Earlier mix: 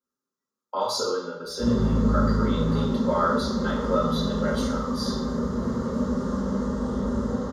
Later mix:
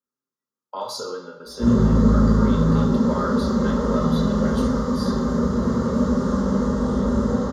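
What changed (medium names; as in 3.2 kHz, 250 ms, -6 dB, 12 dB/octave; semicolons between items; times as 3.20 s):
speech: send -6.0 dB; background: send +6.0 dB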